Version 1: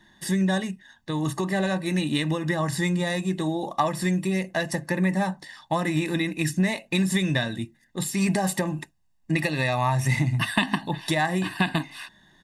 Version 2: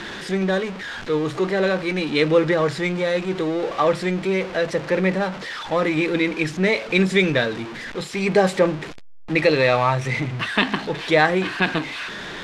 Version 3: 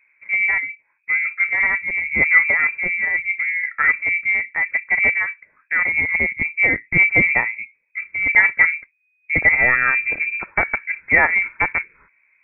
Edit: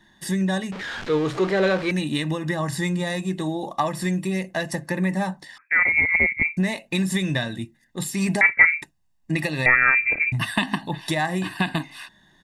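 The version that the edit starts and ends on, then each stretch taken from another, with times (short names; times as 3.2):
1
0.72–1.91 from 2
5.58–6.57 from 3
8.41–8.82 from 3
9.66–10.32 from 3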